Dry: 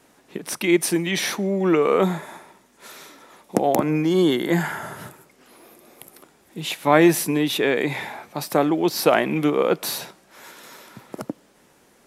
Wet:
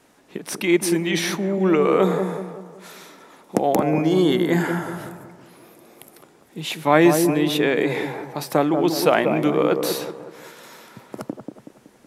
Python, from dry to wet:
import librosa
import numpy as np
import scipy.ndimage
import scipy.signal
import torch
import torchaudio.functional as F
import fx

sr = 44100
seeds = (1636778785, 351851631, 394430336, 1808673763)

y = fx.high_shelf(x, sr, hz=9800.0, db=-3.5)
y = fx.echo_wet_lowpass(y, sr, ms=187, feedback_pct=44, hz=1000.0, wet_db=-5.0)